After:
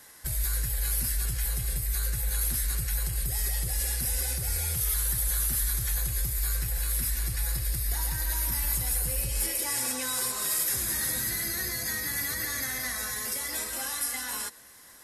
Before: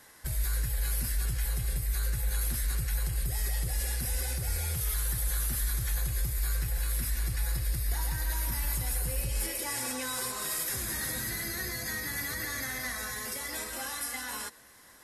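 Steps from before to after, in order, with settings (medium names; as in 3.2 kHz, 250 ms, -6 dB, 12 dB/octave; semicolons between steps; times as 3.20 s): treble shelf 4.1 kHz +6.5 dB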